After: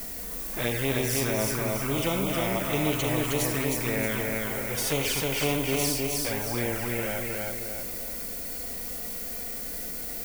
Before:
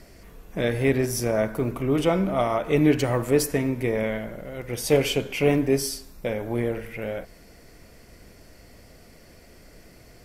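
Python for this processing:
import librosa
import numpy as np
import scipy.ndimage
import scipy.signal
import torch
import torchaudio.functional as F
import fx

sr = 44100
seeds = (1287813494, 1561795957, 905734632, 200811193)

y = fx.hpss(x, sr, part='percussive', gain_db=-12)
y = fx.env_flanger(y, sr, rest_ms=4.6, full_db=-20.5)
y = fx.dmg_noise_colour(y, sr, seeds[0], colour='violet', level_db=-51.0)
y = fx.echo_feedback(y, sr, ms=313, feedback_pct=31, wet_db=-4)
y = fx.spectral_comp(y, sr, ratio=2.0)
y = y * librosa.db_to_amplitude(-3.5)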